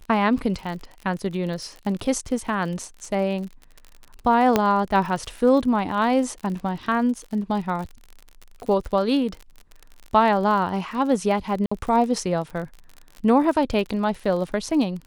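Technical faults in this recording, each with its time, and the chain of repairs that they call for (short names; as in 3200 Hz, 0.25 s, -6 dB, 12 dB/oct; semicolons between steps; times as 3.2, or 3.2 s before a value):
crackle 49/s -31 dBFS
4.56 pop -4 dBFS
11.66–11.71 gap 55 ms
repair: de-click; interpolate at 11.66, 55 ms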